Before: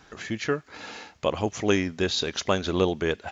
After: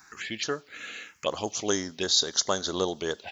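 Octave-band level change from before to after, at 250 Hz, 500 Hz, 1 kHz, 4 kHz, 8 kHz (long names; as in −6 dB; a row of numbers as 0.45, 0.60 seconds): −7.0 dB, −4.5 dB, −3.0 dB, +3.5 dB, can't be measured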